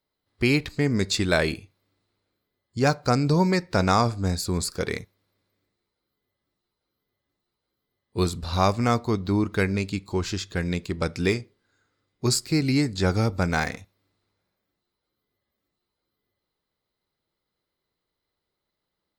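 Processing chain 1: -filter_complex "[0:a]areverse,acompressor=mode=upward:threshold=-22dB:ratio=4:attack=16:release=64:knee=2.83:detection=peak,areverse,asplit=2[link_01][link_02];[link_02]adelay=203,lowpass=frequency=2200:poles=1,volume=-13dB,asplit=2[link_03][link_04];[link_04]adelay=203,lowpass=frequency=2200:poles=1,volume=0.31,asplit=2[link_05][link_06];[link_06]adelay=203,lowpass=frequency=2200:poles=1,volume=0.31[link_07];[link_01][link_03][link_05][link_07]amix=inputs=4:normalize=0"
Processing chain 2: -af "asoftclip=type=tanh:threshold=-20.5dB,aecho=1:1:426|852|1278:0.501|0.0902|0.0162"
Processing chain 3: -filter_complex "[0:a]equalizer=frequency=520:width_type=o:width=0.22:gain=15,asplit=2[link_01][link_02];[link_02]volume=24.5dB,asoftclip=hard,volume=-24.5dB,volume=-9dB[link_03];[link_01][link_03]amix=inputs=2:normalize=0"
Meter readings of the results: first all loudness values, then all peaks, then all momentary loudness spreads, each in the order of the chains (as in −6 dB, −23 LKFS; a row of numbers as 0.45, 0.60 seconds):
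−24.0, −28.0, −21.5 LKFS; −7.0, −16.5, −4.5 dBFS; 15, 11, 8 LU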